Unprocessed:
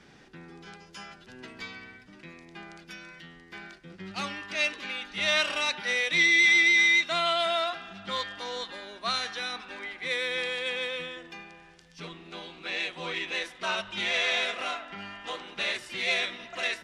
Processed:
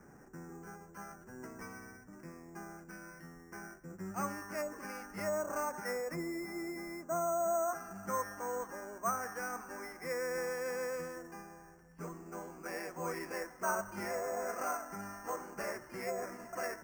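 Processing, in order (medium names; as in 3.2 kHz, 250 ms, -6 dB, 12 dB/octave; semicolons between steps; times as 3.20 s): low-pass that closes with the level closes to 760 Hz, closed at -22.5 dBFS; inverse Chebyshev low-pass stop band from 4 kHz, stop band 50 dB; careless resampling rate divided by 6×, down filtered, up hold; trim -1 dB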